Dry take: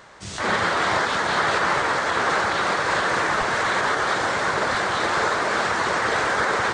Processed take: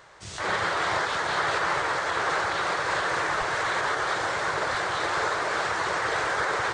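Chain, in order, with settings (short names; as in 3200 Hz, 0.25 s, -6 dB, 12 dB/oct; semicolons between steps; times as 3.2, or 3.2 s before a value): bell 230 Hz -14.5 dB 0.38 oct; gain -4.5 dB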